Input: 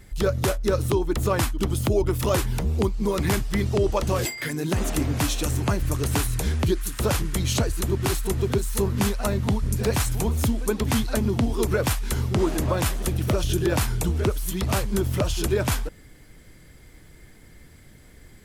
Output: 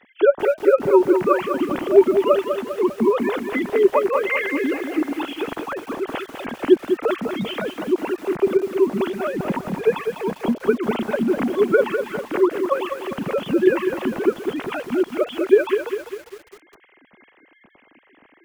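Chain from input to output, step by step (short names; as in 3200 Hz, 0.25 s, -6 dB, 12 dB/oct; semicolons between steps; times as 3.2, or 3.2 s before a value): sine-wave speech; lo-fi delay 0.2 s, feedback 55%, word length 7-bit, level -7 dB; gain +2 dB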